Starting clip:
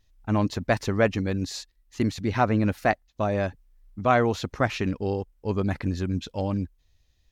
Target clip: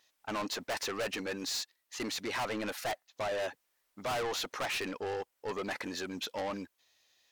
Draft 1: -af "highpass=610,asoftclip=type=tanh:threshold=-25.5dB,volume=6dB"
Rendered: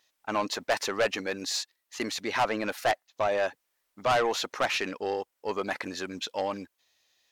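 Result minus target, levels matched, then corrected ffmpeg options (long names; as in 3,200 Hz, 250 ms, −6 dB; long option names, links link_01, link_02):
soft clipping: distortion −6 dB
-af "highpass=610,asoftclip=type=tanh:threshold=-37.5dB,volume=6dB"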